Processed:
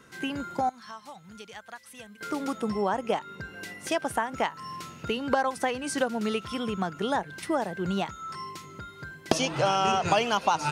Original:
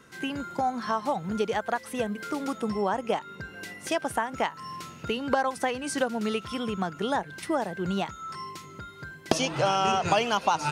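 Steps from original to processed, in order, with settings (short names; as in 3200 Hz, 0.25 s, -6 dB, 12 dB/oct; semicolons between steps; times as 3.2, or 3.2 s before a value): 0.69–2.21 passive tone stack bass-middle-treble 5-5-5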